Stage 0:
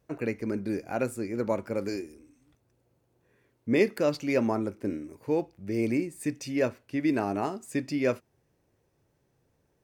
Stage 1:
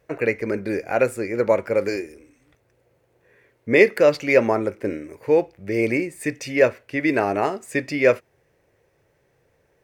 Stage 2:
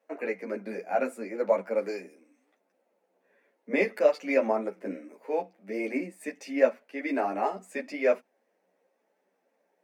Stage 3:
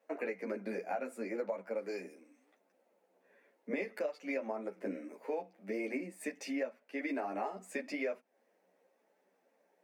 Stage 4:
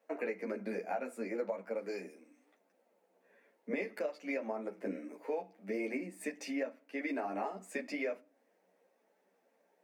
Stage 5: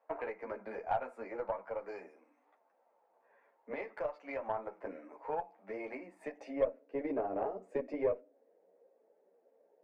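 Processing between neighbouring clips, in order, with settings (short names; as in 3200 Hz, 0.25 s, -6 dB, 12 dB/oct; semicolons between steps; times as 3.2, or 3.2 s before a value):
graphic EQ 250/500/2000 Hz -5/+8/+10 dB; gain +4.5 dB
rippled Chebyshev high-pass 180 Hz, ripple 9 dB; ensemble effect
compressor 8:1, threshold -34 dBFS, peak gain reduction 18.5 dB
reverb RT60 0.40 s, pre-delay 4 ms, DRR 15 dB
band-pass sweep 940 Hz -> 470 Hz, 6.12–6.78; added harmonics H 2 -20 dB, 6 -30 dB, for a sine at -27 dBFS; gain +8 dB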